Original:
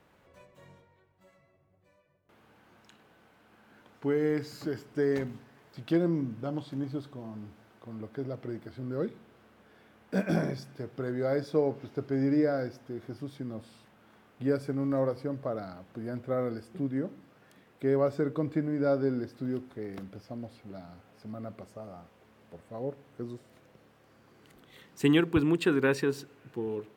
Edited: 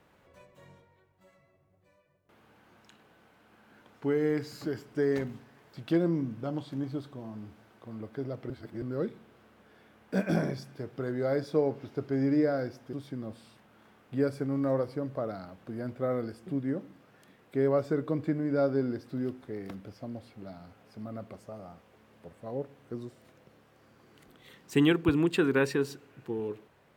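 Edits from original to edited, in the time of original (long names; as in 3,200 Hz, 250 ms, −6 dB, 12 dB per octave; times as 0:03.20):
0:08.50–0:08.82: reverse
0:12.93–0:13.21: remove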